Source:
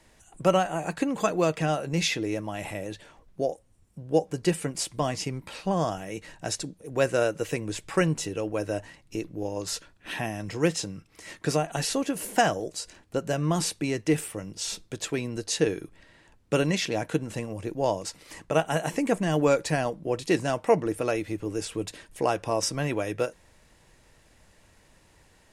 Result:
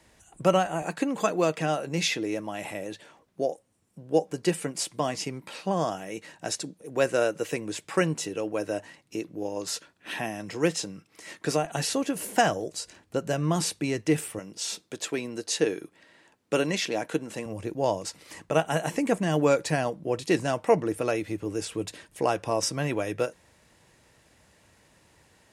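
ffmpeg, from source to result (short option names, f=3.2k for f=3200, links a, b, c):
-af "asetnsamples=n=441:p=0,asendcmd='0.82 highpass f 170;11.65 highpass f 75;14.39 highpass f 220;17.46 highpass f 77',highpass=44"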